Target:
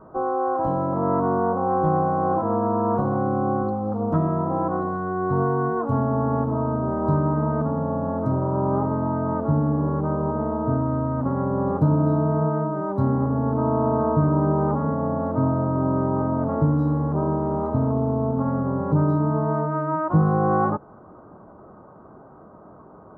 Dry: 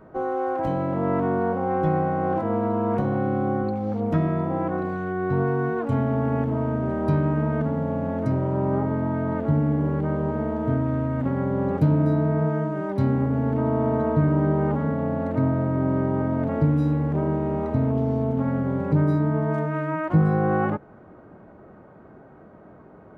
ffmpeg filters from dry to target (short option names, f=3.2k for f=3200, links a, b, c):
-af "highshelf=f=1.6k:t=q:w=3:g=-11"